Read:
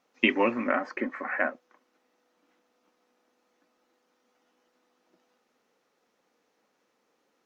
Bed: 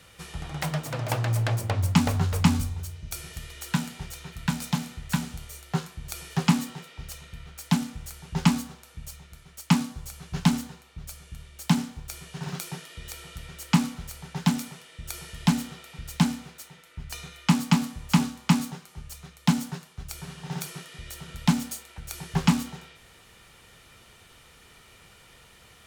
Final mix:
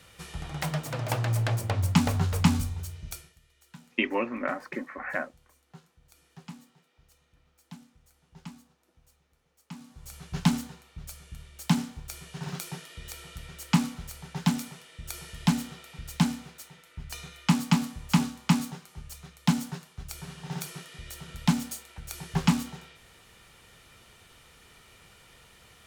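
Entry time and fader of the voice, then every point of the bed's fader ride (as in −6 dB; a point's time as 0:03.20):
3.75 s, −4.0 dB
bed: 0:03.10 −1.5 dB
0:03.37 −23 dB
0:09.72 −23 dB
0:10.14 −2 dB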